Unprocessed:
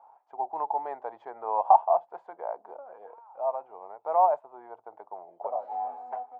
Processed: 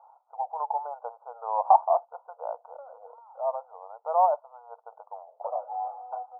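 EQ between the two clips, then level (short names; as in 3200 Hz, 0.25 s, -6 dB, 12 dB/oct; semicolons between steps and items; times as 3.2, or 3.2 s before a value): brick-wall FIR band-pass 450–1500 Hz; 0.0 dB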